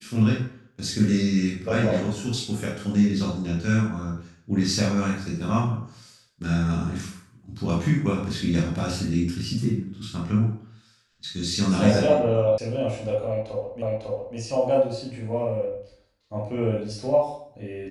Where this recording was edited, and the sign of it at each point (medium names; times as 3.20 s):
12.58 s: sound stops dead
13.82 s: repeat of the last 0.55 s